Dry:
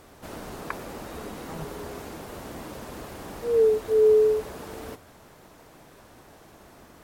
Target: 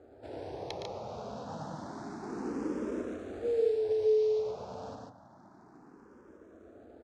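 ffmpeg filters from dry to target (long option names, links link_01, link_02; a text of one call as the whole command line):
ffmpeg -i in.wav -filter_complex "[0:a]asettb=1/sr,asplit=3[link_01][link_02][link_03];[link_01]atrim=end=2.234[link_04];[link_02]atrim=start=2.23:end=3.02,asetpts=PTS-STARTPTS,afade=type=in:duration=0.004:curve=qsin,afade=type=out:start_time=0.786:duration=0.004:curve=qsin,equalizer=frequency=400:width_type=o:width=2.6:gain=8[link_05];[link_03]atrim=start=3.016[link_06];[link_04][link_05]acrossfade=duration=0.004:curve1=hsin:curve2=qsin[link_07];[link_07][link_06]acrossfade=duration=0.004:curve1=qsin:curve2=hsin,acrossover=split=1400[link_08][link_09];[link_08]acompressor=threshold=-28dB:ratio=8[link_10];[link_09]aeval=exprs='sgn(val(0))*max(abs(val(0))-0.00335,0)':channel_layout=same[link_11];[link_10][link_11]amix=inputs=2:normalize=0,acrusher=bits=5:mode=log:mix=0:aa=0.000001,aeval=exprs='(mod(11.2*val(0)+1,2)-1)/11.2':channel_layout=same,highpass=100,equalizer=frequency=160:width_type=q:width=4:gain=-7,equalizer=frequency=1100:width_type=q:width=4:gain=-5,equalizer=frequency=2000:width_type=q:width=4:gain=-5,equalizer=frequency=3000:width_type=q:width=4:gain=-5,lowpass=frequency=6400:width=0.5412,lowpass=frequency=6400:width=1.3066,aecho=1:1:113.7|145.8:0.447|0.631,asplit=2[link_12][link_13];[link_13]afreqshift=0.29[link_14];[link_12][link_14]amix=inputs=2:normalize=1" out.wav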